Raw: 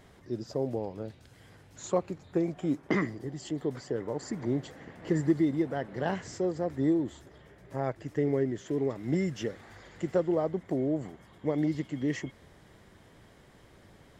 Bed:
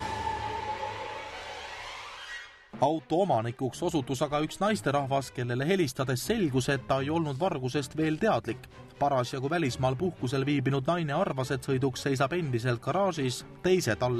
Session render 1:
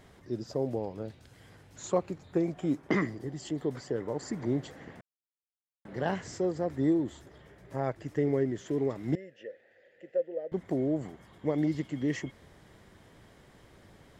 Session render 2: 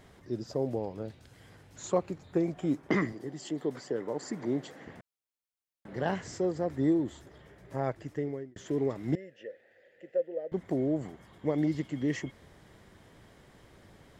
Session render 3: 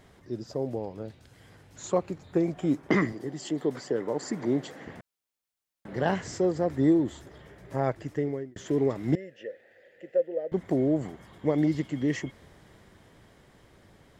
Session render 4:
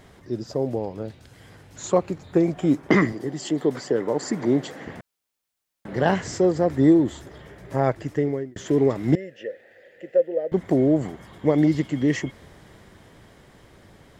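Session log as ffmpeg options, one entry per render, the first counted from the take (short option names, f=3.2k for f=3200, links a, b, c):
-filter_complex "[0:a]asettb=1/sr,asplit=3[a][b][c];[a]atrim=end=9.154[d];[b]atrim=start=9.15:end=10.52,asetpts=PTS-STARTPTS,afade=t=in:d=0.004:c=qsin,afade=t=out:st=1.366:d=0.004:c=qsin,asplit=3[e][f][g];[e]bandpass=f=530:t=q:w=8,volume=0dB[h];[f]bandpass=f=1.84k:t=q:w=8,volume=-6dB[i];[g]bandpass=f=2.48k:t=q:w=8,volume=-9dB[j];[h][i][j]amix=inputs=3:normalize=0[k];[c]atrim=start=10.516[l];[d][k]acrossfade=d=0.004:c1=hsin:c2=qsin[m];[m][l]acrossfade=d=0.004:c1=qsin:c2=hsin,asplit=3[n][o][p];[n]atrim=end=5.01,asetpts=PTS-STARTPTS,afade=t=out:st=5.006:d=0.004:c=hsin[q];[o]atrim=start=5.01:end=5.85,asetpts=PTS-STARTPTS,volume=0[r];[p]atrim=start=5.85,asetpts=PTS-STARTPTS,afade=t=in:d=0.004:c=hsin[s];[q][r][s]concat=n=3:v=0:a=1"
-filter_complex "[0:a]asettb=1/sr,asplit=3[a][b][c];[a]atrim=end=3.124[d];[b]atrim=start=3.12:end=4.87,asetpts=PTS-STARTPTS,afade=t=in:d=0.004:c=qsin,afade=t=out:st=1.746:d=0.004:c=qsin,highpass=180[e];[c]atrim=start=4.866[f];[d][e]acrossfade=d=0.004:c1=hsin:c2=qsin[g];[g][f]acrossfade=d=0.004:c1=qsin:c2=hsin,asplit=2[h][i];[h]atrim=end=8.56,asetpts=PTS-STARTPTS,afade=t=out:st=7.94:d=0.62[j];[i]atrim=start=8.56,asetpts=PTS-STARTPTS,afade=t=in:d=0.004:c=hsin[k];[j][k]concat=n=2:v=0:a=1"
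-af "dynaudnorm=f=340:g=13:m=4.5dB"
-af "volume=6dB"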